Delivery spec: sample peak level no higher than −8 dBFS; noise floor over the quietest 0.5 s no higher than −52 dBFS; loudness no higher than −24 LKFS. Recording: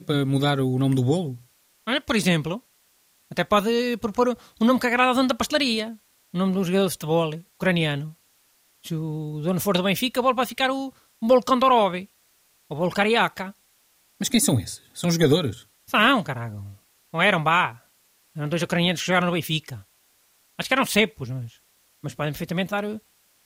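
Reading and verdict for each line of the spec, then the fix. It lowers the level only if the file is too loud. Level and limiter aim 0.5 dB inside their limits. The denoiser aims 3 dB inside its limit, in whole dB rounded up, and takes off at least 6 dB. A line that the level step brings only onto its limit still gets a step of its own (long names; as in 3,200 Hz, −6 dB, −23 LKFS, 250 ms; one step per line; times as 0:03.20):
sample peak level −7.0 dBFS: out of spec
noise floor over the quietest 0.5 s −62 dBFS: in spec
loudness −23.0 LKFS: out of spec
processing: level −1.5 dB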